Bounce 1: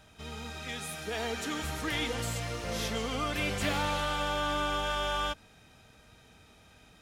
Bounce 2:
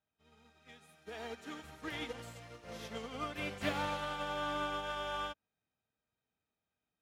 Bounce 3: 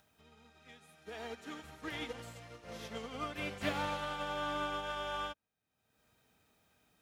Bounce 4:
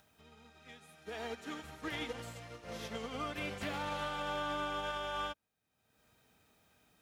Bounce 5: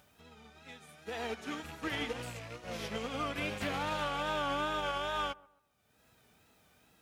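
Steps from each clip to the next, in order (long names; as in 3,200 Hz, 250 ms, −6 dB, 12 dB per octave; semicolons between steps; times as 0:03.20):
high-pass filter 130 Hz 6 dB per octave; parametric band 9,700 Hz −6.5 dB 2.6 octaves; expander for the loud parts 2.5 to 1, over −49 dBFS; level −1 dB
upward compression, threshold −56 dBFS
brickwall limiter −32 dBFS, peak gain reduction 9.5 dB; level +2.5 dB
loose part that buzzes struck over −50 dBFS, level −41 dBFS; tape wow and flutter 84 cents; delay with a low-pass on its return 133 ms, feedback 32%, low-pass 1,500 Hz, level −22 dB; level +3.5 dB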